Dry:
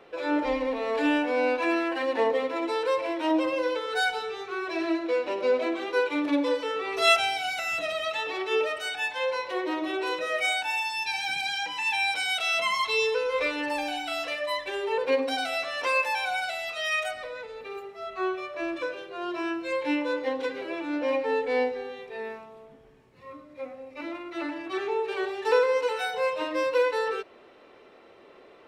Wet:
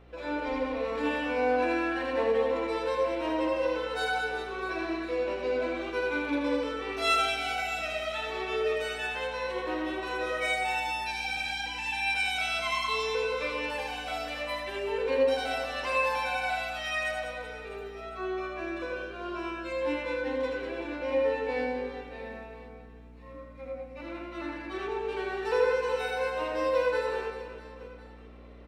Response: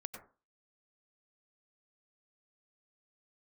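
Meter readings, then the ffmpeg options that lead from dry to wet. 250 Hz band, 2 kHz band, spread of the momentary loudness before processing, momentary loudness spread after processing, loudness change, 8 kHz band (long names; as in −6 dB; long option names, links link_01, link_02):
−4.5 dB, −3.0 dB, 11 LU, 14 LU, −3.0 dB, −4.5 dB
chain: -filter_complex "[0:a]aeval=exprs='val(0)+0.00447*(sin(2*PI*60*n/s)+sin(2*PI*2*60*n/s)/2+sin(2*PI*3*60*n/s)/3+sin(2*PI*4*60*n/s)/4+sin(2*PI*5*60*n/s)/5)':channel_layout=same,aecho=1:1:80|200|380|650|1055:0.631|0.398|0.251|0.158|0.1[link_01];[1:a]atrim=start_sample=2205,afade=type=out:start_time=0.16:duration=0.01,atrim=end_sample=7497[link_02];[link_01][link_02]afir=irnorm=-1:irlink=0,volume=-2.5dB"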